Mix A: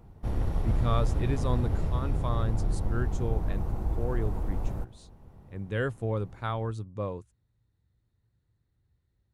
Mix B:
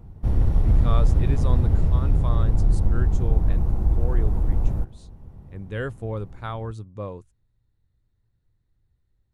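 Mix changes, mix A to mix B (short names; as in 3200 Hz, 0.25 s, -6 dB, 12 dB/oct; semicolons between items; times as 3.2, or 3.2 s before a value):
speech: remove HPF 57 Hz; background: add low shelf 270 Hz +10 dB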